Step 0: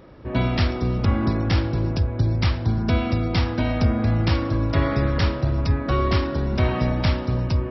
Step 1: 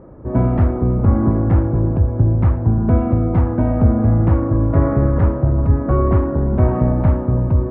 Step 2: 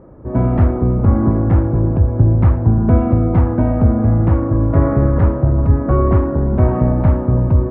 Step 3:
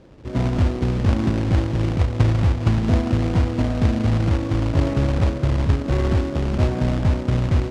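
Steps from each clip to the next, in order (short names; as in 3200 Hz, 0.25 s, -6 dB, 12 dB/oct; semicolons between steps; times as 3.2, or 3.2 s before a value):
Bessel low-pass 870 Hz, order 4; gain +6.5 dB
AGC; gain -1 dB
median filter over 41 samples; companded quantiser 4-bit; air absorption 93 m; gain -6 dB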